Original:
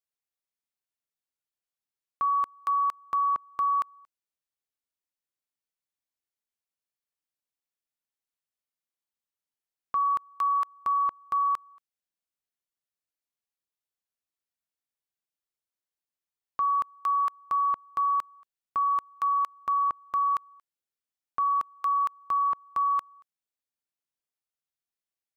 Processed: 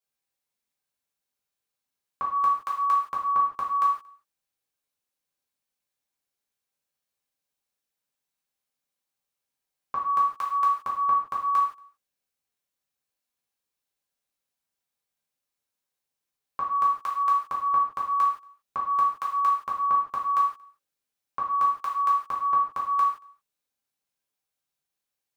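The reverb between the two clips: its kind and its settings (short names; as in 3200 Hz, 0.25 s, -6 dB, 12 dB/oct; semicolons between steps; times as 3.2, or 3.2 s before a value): non-linear reverb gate 0.2 s falling, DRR -5.5 dB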